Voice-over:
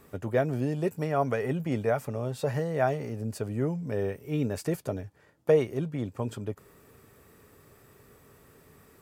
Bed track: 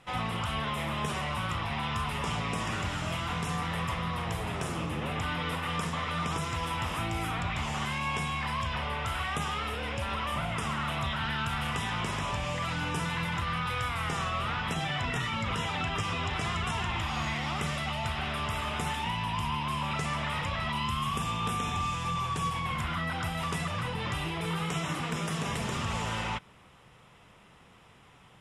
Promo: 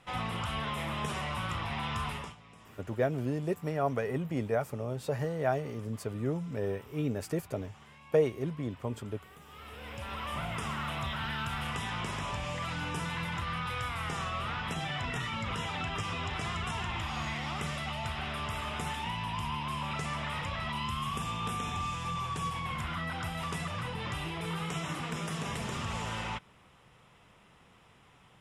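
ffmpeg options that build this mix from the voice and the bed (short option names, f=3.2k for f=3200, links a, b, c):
-filter_complex "[0:a]adelay=2650,volume=-3.5dB[a];[1:a]volume=17dB,afade=t=out:st=2.08:d=0.27:silence=0.0944061,afade=t=in:st=9.46:d=0.97:silence=0.105925[b];[a][b]amix=inputs=2:normalize=0"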